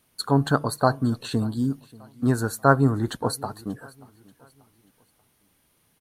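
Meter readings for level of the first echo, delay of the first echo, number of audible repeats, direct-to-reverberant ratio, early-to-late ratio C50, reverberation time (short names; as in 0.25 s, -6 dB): -23.0 dB, 0.585 s, 2, none, none, none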